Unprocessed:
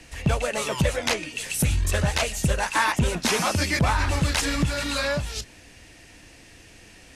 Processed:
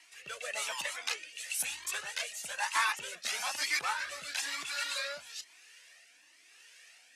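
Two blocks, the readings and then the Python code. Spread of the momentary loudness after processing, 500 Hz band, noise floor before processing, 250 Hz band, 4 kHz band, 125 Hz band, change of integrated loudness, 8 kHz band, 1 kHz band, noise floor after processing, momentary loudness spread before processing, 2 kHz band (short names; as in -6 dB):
10 LU, -19.5 dB, -50 dBFS, -33.5 dB, -7.5 dB, under -40 dB, -10.0 dB, -7.5 dB, -10.0 dB, -62 dBFS, 5 LU, -7.5 dB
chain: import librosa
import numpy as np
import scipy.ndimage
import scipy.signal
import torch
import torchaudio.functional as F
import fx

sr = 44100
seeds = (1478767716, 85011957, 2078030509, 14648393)

y = scipy.signal.sosfilt(scipy.signal.butter(2, 1100.0, 'highpass', fs=sr, output='sos'), x)
y = fx.rotary(y, sr, hz=1.0)
y = fx.comb_cascade(y, sr, direction='rising', hz=1.1)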